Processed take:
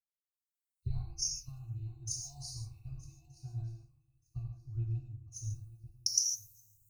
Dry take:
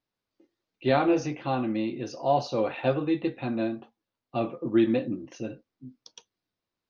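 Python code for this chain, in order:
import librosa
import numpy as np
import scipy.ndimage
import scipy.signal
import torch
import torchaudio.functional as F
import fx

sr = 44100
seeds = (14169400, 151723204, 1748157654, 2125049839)

p1 = fx.spec_ripple(x, sr, per_octave=0.89, drift_hz=0.63, depth_db=10)
p2 = fx.recorder_agc(p1, sr, target_db=-16.0, rise_db_per_s=10.0, max_gain_db=30)
p3 = scipy.signal.sosfilt(scipy.signal.cheby2(4, 50, [230.0, 3600.0], 'bandstop', fs=sr, output='sos'), p2)
p4 = fx.tilt_shelf(p3, sr, db=-4.5, hz=1400.0)
p5 = p4 + 0.89 * np.pad(p4, (int(2.7 * sr / 1000.0), 0))[:len(p4)]
p6 = p5 + fx.echo_swing(p5, sr, ms=1228, ratio=3, feedback_pct=33, wet_db=-12.0, dry=0)
p7 = fx.rev_gated(p6, sr, seeds[0], gate_ms=180, shape='flat', drr_db=1.0)
p8 = fx.band_widen(p7, sr, depth_pct=100)
y = p8 * 10.0 ** (8.5 / 20.0)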